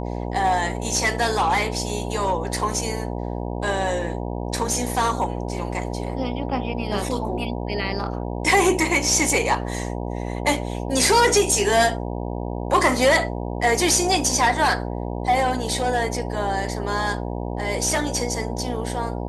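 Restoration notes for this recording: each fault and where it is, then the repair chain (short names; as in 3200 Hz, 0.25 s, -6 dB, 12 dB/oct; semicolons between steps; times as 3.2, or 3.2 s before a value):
buzz 60 Hz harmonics 16 -28 dBFS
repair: de-hum 60 Hz, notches 16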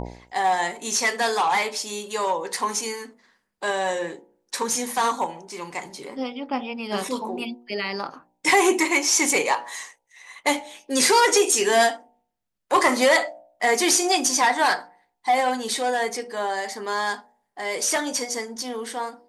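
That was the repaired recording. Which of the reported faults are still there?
none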